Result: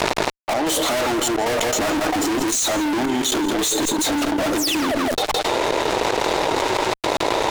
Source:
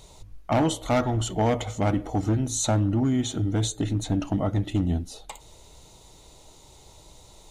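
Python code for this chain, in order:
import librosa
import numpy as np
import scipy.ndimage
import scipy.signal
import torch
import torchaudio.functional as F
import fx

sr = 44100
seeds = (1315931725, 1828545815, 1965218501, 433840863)

p1 = fx.spec_quant(x, sr, step_db=15)
p2 = fx.env_lowpass(p1, sr, base_hz=1600.0, full_db=-22.5)
p3 = scipy.signal.sosfilt(scipy.signal.butter(6, 300.0, 'highpass', fs=sr, output='sos'), p2)
p4 = fx.high_shelf(p3, sr, hz=8100.0, db=4.5)
p5 = fx.rider(p4, sr, range_db=4, speed_s=0.5)
p6 = p4 + (p5 * 10.0 ** (2.0 / 20.0))
p7 = fx.step_gate(p6, sr, bpm=113, pattern='x.xx.xxxx..x.x', floor_db=-24.0, edge_ms=4.5)
p8 = fx.spec_paint(p7, sr, seeds[0], shape='fall', start_s=4.57, length_s=0.38, low_hz=530.0, high_hz=9500.0, level_db=-32.0)
p9 = fx.fuzz(p8, sr, gain_db=43.0, gate_db=-51.0)
p10 = p9 + fx.echo_single(p9, sr, ms=165, db=-15.0, dry=0)
p11 = fx.env_flatten(p10, sr, amount_pct=100)
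y = p11 * 10.0 ** (-7.5 / 20.0)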